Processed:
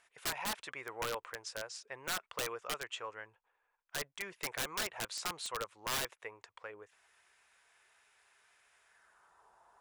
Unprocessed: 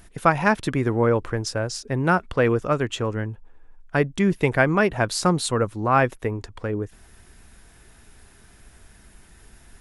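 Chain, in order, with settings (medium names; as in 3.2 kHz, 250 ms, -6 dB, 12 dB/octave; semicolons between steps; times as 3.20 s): band-pass sweep 2.2 kHz -> 980 Hz, 8.81–9.46 s; ten-band graphic EQ 250 Hz -9 dB, 500 Hz +7 dB, 1 kHz +7 dB, 2 kHz -6 dB, 8 kHz +10 dB; integer overflow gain 24.5 dB; trim -4.5 dB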